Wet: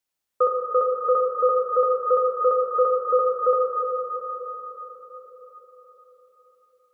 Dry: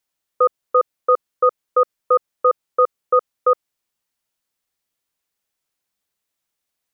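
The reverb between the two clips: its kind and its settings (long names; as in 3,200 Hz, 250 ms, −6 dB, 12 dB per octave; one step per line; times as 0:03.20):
dense smooth reverb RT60 4.9 s, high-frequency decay 0.8×, DRR −1.5 dB
level −5 dB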